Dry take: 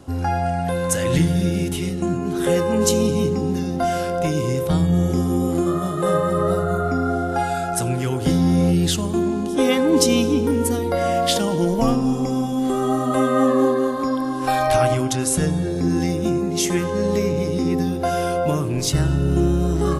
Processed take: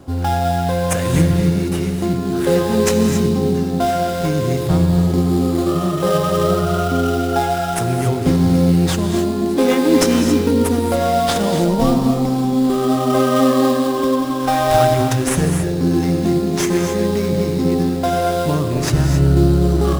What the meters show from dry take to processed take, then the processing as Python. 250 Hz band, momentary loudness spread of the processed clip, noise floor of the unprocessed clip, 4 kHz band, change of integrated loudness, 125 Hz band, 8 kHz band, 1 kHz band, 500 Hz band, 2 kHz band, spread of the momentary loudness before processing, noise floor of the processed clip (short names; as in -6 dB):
+4.0 dB, 5 LU, -25 dBFS, +1.5 dB, +3.5 dB, +4.5 dB, 0.0 dB, +3.5 dB, +3.0 dB, +3.0 dB, 5 LU, -21 dBFS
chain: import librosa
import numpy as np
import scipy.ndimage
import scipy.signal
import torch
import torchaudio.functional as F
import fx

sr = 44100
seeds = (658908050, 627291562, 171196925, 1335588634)

p1 = fx.sample_hold(x, sr, seeds[0], rate_hz=4400.0, jitter_pct=20)
p2 = x + (p1 * librosa.db_to_amplitude(-1.0))
p3 = fx.rev_gated(p2, sr, seeds[1], gate_ms=300, shape='rising', drr_db=5.0)
y = p3 * librosa.db_to_amplitude(-2.5)